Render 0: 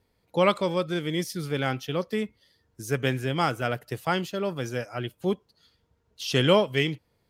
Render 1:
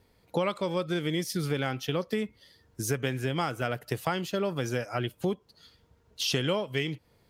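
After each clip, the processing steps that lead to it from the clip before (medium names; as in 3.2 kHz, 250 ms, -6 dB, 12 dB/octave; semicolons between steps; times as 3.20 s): compression 6:1, threshold -32 dBFS, peak gain reduction 16 dB; trim +6 dB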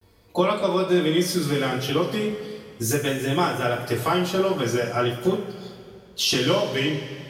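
vibrato 0.4 Hz 56 cents; two-slope reverb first 0.26 s, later 2.5 s, from -18 dB, DRR -6.5 dB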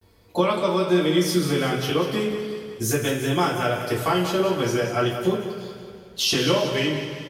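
feedback delay 184 ms, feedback 51%, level -10.5 dB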